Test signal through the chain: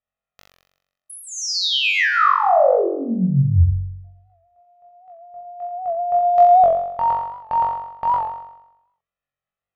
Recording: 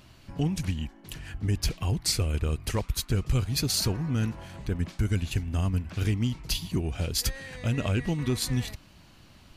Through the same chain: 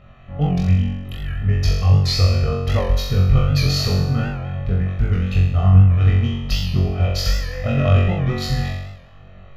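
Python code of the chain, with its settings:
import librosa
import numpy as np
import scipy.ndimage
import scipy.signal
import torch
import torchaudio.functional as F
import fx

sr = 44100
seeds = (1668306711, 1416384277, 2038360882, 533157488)

p1 = fx.wiener(x, sr, points=9)
p2 = p1 + 0.75 * np.pad(p1, (int(1.6 * sr / 1000.0), 0))[:len(p1)]
p3 = fx.dynamic_eq(p2, sr, hz=950.0, q=1.4, threshold_db=-39.0, ratio=4.0, max_db=3)
p4 = scipy.signal.lfilter(np.full(5, 1.0 / 5), 1.0, p3)
p5 = p4 + fx.room_flutter(p4, sr, wall_m=3.7, rt60_s=0.88, dry=0)
p6 = fx.record_warp(p5, sr, rpm=78.0, depth_cents=100.0)
y = F.gain(torch.from_numpy(p6), 3.0).numpy()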